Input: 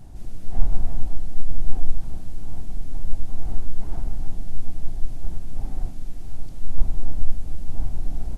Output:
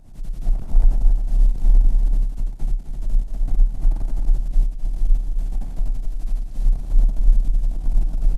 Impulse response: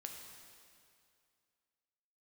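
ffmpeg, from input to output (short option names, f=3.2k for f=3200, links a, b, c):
-filter_complex "[0:a]afftfilt=real='re':imag='-im':win_size=8192:overlap=0.75,acrossover=split=160|220[a][b][c];[b]acontrast=51[d];[a][d][c]amix=inputs=3:normalize=0,aeval=exprs='0.422*(cos(1*acos(clip(val(0)/0.422,-1,1)))-cos(1*PI/2))+0.015*(cos(3*acos(clip(val(0)/0.422,-1,1)))-cos(3*PI/2))+0.015*(cos(4*acos(clip(val(0)/0.422,-1,1)))-cos(4*PI/2))+0.00531*(cos(5*acos(clip(val(0)/0.422,-1,1)))-cos(5*PI/2))+0.106*(cos(8*acos(clip(val(0)/0.422,-1,1)))-cos(8*PI/2))':c=same,aeval=exprs='clip(val(0),-1,0.0944)':c=same,afreqshift=-34,aecho=1:1:262:0.473"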